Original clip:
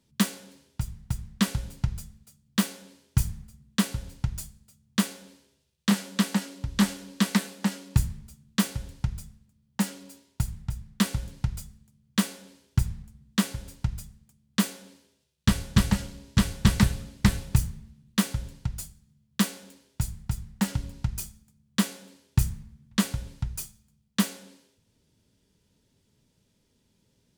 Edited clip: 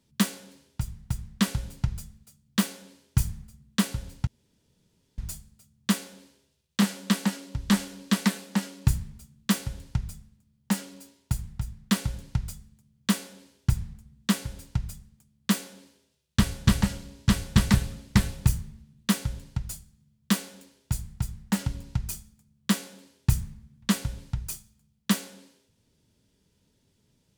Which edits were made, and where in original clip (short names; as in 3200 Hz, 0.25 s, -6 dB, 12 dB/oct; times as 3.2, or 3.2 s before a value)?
4.27 insert room tone 0.91 s